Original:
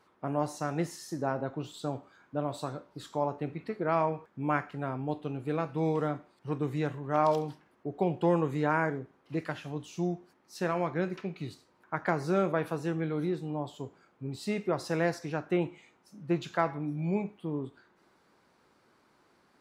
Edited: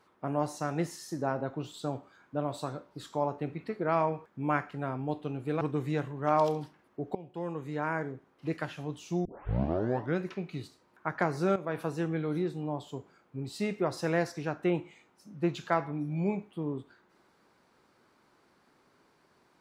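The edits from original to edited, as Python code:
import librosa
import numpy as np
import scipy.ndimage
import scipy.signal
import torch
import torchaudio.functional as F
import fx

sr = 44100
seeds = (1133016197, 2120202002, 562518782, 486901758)

y = fx.edit(x, sr, fx.cut(start_s=5.61, length_s=0.87),
    fx.fade_in_from(start_s=8.02, length_s=1.33, floor_db=-20.0),
    fx.tape_start(start_s=10.12, length_s=0.93),
    fx.fade_in_from(start_s=12.43, length_s=0.29, floor_db=-13.5), tone=tone)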